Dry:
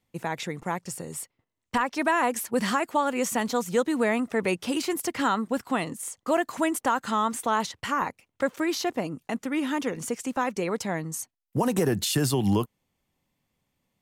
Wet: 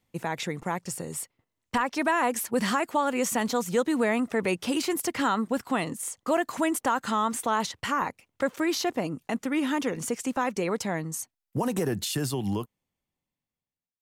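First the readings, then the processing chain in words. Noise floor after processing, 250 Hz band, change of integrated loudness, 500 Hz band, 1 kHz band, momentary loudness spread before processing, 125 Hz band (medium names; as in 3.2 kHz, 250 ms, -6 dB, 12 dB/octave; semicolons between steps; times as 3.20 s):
under -85 dBFS, -0.5 dB, -1.0 dB, -1.0 dB, -1.0 dB, 9 LU, -3.0 dB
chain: fade out at the end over 3.46 s; in parallel at -2.5 dB: peak limiter -21.5 dBFS, peak gain reduction 8.5 dB; on the sum: trim -3.5 dB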